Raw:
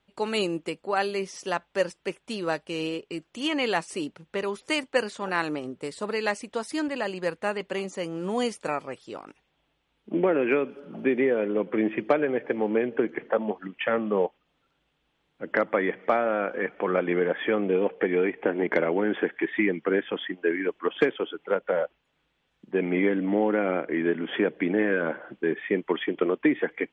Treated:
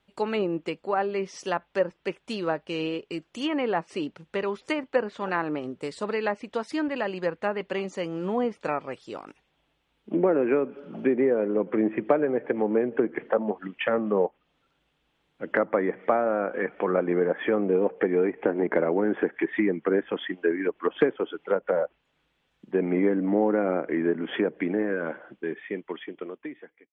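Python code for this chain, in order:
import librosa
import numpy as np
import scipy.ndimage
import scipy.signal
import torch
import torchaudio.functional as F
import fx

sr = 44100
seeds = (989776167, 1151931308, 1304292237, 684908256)

y = fx.fade_out_tail(x, sr, length_s=3.02)
y = fx.env_lowpass_down(y, sr, base_hz=1300.0, full_db=-22.0)
y = y * librosa.db_to_amplitude(1.0)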